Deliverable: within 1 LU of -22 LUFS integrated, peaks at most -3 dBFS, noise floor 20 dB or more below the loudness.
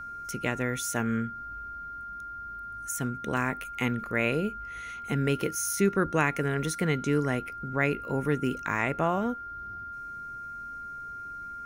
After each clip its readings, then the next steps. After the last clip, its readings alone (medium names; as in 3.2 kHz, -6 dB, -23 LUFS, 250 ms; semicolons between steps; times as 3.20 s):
dropouts 1; longest dropout 3.1 ms; steady tone 1.4 kHz; tone level -37 dBFS; loudness -30.5 LUFS; peak level -10.5 dBFS; loudness target -22.0 LUFS
-> interpolate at 3.37 s, 3.1 ms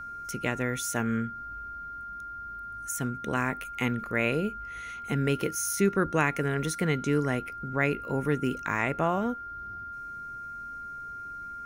dropouts 0; steady tone 1.4 kHz; tone level -37 dBFS
-> band-stop 1.4 kHz, Q 30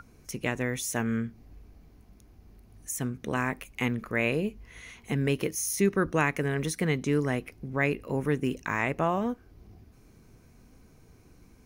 steady tone not found; loudness -29.5 LUFS; peak level -11.0 dBFS; loudness target -22.0 LUFS
-> trim +7.5 dB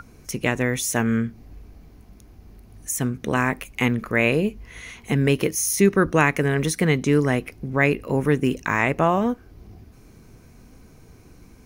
loudness -22.0 LUFS; peak level -3.5 dBFS; noise floor -50 dBFS